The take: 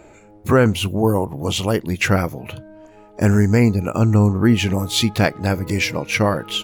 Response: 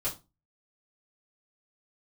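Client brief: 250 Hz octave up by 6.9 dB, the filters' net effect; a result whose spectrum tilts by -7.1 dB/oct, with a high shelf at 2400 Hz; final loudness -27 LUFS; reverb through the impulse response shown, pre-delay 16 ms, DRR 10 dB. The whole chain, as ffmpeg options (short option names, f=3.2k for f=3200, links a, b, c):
-filter_complex "[0:a]equalizer=f=250:t=o:g=8.5,highshelf=f=2.4k:g=-4,asplit=2[a][b];[1:a]atrim=start_sample=2205,adelay=16[c];[b][c]afir=irnorm=-1:irlink=0,volume=-14.5dB[d];[a][d]amix=inputs=2:normalize=0,volume=-13dB"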